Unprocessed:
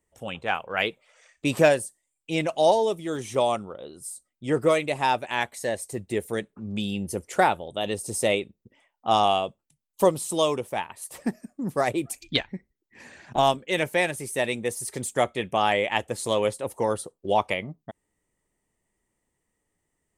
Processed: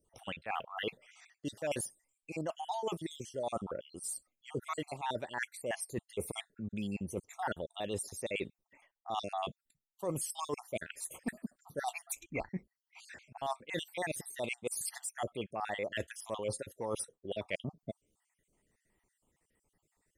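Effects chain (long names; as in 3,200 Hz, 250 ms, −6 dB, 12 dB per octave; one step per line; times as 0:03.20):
time-frequency cells dropped at random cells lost 53%
reversed playback
downward compressor 10 to 1, threshold −36 dBFS, peak gain reduction 22 dB
reversed playback
level +2 dB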